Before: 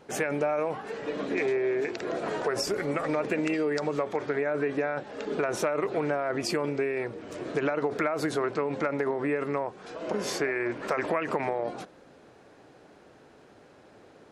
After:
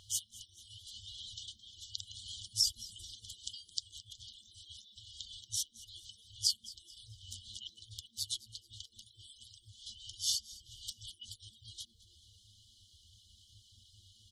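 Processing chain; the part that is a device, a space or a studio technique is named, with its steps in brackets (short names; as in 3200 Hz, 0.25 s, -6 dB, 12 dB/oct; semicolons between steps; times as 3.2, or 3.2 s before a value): FFT band-reject 110–2900 Hz; reverb removal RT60 0.61 s; bell 970 Hz +8.5 dB 2.6 oct; parallel compression (in parallel at -3.5 dB: compressor, threshold -59 dBFS, peak gain reduction 28 dB); on the sum: frequency-shifting echo 0.217 s, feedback 38%, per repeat +120 Hz, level -19 dB; gain +2.5 dB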